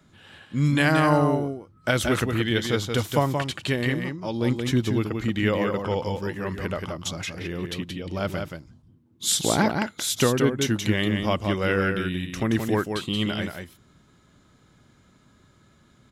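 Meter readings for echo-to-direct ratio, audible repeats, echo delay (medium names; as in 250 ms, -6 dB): -5.5 dB, 1, 176 ms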